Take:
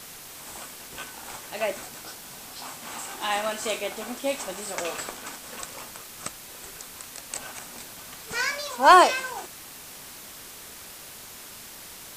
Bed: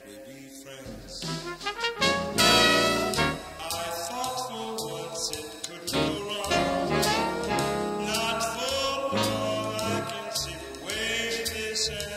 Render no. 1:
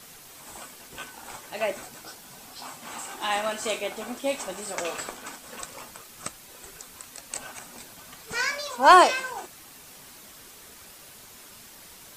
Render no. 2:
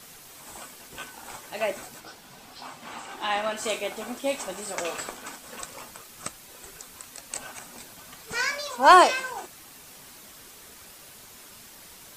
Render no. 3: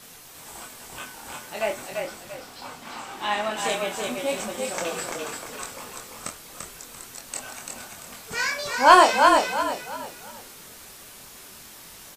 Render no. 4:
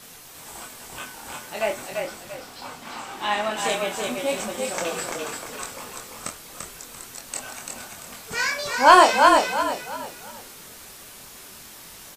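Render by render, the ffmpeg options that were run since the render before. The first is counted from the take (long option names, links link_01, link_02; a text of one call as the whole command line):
ffmpeg -i in.wav -af "afftdn=noise_reduction=6:noise_floor=-44" out.wav
ffmpeg -i in.wav -filter_complex "[0:a]asettb=1/sr,asplit=3[link_01][link_02][link_03];[link_01]atrim=end=2.004[link_04];[link_02]atrim=start=2:end=3.57,asetpts=PTS-STARTPTS,afade=type=in:duration=0.004:curve=qsin,afade=type=out:start_time=1.566:duration=0.004:curve=qsin,acrossover=split=5100[link_05][link_06];[link_06]acompressor=threshold=-53dB:ratio=4:attack=1:release=60[link_07];[link_05][link_07]amix=inputs=2:normalize=0[link_08];[link_03]atrim=start=3.566[link_09];[link_04][link_08]acrossfade=duration=0.004:curve1=hsin:curve2=qsin[link_10];[link_10][link_09]acrossfade=duration=0.004:curve1=qsin:curve2=hsin" out.wav
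ffmpeg -i in.wav -filter_complex "[0:a]asplit=2[link_01][link_02];[link_02]adelay=24,volume=-4.5dB[link_03];[link_01][link_03]amix=inputs=2:normalize=0,asplit=5[link_04][link_05][link_06][link_07][link_08];[link_05]adelay=341,afreqshift=-33,volume=-4dB[link_09];[link_06]adelay=682,afreqshift=-66,volume=-13.4dB[link_10];[link_07]adelay=1023,afreqshift=-99,volume=-22.7dB[link_11];[link_08]adelay=1364,afreqshift=-132,volume=-32.1dB[link_12];[link_04][link_09][link_10][link_11][link_12]amix=inputs=5:normalize=0" out.wav
ffmpeg -i in.wav -af "volume=1.5dB,alimiter=limit=-2dB:level=0:latency=1" out.wav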